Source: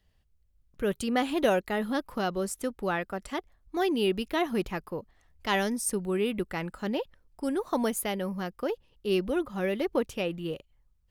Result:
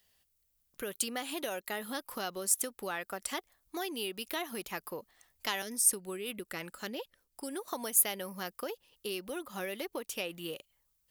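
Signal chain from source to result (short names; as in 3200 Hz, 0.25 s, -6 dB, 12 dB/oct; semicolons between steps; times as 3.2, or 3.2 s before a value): 5.62–7.68 rotary speaker horn 5.5 Hz; compressor 10:1, threshold -32 dBFS, peak gain reduction 13 dB; RIAA curve recording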